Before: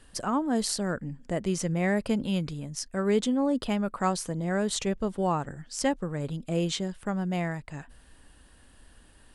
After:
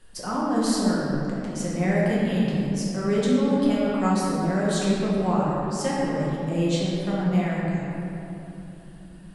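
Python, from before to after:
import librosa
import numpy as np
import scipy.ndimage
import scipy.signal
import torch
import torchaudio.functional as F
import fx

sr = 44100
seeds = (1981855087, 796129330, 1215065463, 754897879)

y = fx.over_compress(x, sr, threshold_db=-38.0, ratio=-1.0, at=(1.1, 1.56))
y = fx.room_shoebox(y, sr, seeds[0], volume_m3=170.0, walls='hard', distance_m=0.98)
y = y * librosa.db_to_amplitude(-4.0)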